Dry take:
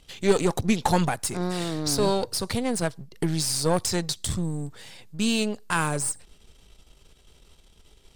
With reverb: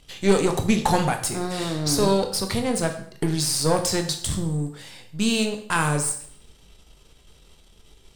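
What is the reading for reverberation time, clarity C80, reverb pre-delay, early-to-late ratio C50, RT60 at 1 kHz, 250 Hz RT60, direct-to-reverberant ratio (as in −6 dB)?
0.60 s, 13.0 dB, 7 ms, 9.5 dB, 0.60 s, 0.60 s, 5.0 dB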